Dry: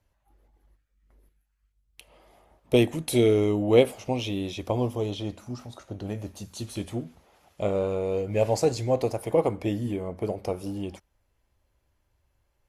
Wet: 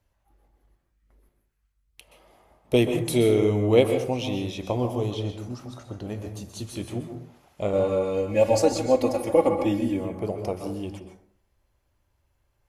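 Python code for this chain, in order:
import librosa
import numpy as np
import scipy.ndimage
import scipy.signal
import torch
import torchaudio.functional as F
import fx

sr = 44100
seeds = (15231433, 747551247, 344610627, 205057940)

y = fx.comb(x, sr, ms=3.6, depth=0.94, at=(7.73, 10.05))
y = fx.rev_plate(y, sr, seeds[0], rt60_s=0.55, hf_ratio=0.5, predelay_ms=115, drr_db=5.5)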